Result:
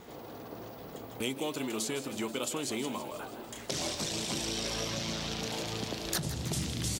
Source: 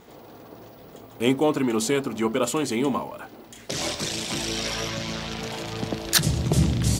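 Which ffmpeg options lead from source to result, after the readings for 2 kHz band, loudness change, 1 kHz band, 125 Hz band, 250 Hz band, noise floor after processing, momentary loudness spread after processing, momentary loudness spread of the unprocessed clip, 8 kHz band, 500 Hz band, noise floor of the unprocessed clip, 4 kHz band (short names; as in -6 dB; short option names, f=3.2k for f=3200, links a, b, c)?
-8.5 dB, -9.5 dB, -9.0 dB, -12.0 dB, -11.0 dB, -46 dBFS, 12 LU, 19 LU, -6.5 dB, -10.5 dB, -47 dBFS, -6.5 dB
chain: -filter_complex "[0:a]acrossover=split=1100|2800[a][b][c];[a]acompressor=threshold=-36dB:ratio=4[d];[b]acompressor=threshold=-50dB:ratio=4[e];[c]acompressor=threshold=-35dB:ratio=4[f];[d][e][f]amix=inputs=3:normalize=0,asplit=9[g][h][i][j][k][l][m][n][o];[h]adelay=161,afreqshift=85,volume=-12dB[p];[i]adelay=322,afreqshift=170,volume=-15.9dB[q];[j]adelay=483,afreqshift=255,volume=-19.8dB[r];[k]adelay=644,afreqshift=340,volume=-23.6dB[s];[l]adelay=805,afreqshift=425,volume=-27.5dB[t];[m]adelay=966,afreqshift=510,volume=-31.4dB[u];[n]adelay=1127,afreqshift=595,volume=-35.3dB[v];[o]adelay=1288,afreqshift=680,volume=-39.1dB[w];[g][p][q][r][s][t][u][v][w]amix=inputs=9:normalize=0"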